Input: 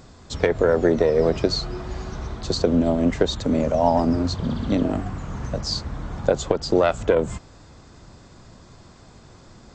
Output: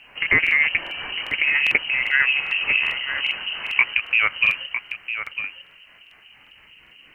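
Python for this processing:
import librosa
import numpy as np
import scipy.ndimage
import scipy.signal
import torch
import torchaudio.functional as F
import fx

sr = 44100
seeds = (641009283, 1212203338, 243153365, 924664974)

p1 = fx.speed_glide(x, sr, from_pct=199, to_pct=74)
p2 = fx.highpass(p1, sr, hz=60.0, slope=6)
p3 = fx.low_shelf(p2, sr, hz=130.0, db=-3.5)
p4 = fx.rider(p3, sr, range_db=4, speed_s=0.5)
p5 = p3 + (p4 * librosa.db_to_amplitude(1.0))
p6 = fx.harmonic_tremolo(p5, sr, hz=4.3, depth_pct=70, crossover_hz=560.0)
p7 = fx.freq_invert(p6, sr, carrier_hz=3000)
p8 = fx.air_absorb(p7, sr, metres=210.0)
p9 = p8 + fx.echo_single(p8, sr, ms=954, db=-9.5, dry=0)
p10 = fx.quant_dither(p9, sr, seeds[0], bits=12, dither='none')
y = fx.buffer_crackle(p10, sr, first_s=0.42, period_s=0.4, block=2048, kind='repeat')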